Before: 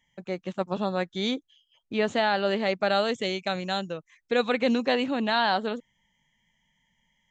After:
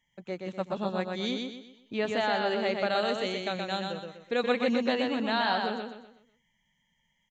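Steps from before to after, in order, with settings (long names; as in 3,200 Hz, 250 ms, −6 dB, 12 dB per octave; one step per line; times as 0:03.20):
repeating echo 124 ms, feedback 38%, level −4 dB
level −4.5 dB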